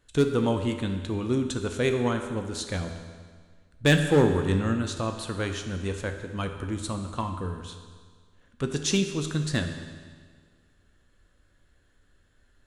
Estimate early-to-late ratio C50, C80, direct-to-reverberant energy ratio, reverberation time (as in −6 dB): 7.0 dB, 8.5 dB, 5.5 dB, 1.7 s